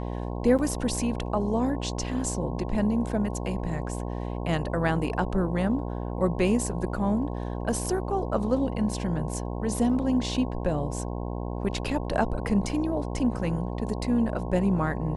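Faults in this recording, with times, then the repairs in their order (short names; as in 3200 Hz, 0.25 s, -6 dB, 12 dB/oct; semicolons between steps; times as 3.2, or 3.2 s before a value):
buzz 60 Hz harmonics 18 -32 dBFS
0.58–0.59 gap 7.7 ms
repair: de-hum 60 Hz, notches 18; interpolate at 0.58, 7.7 ms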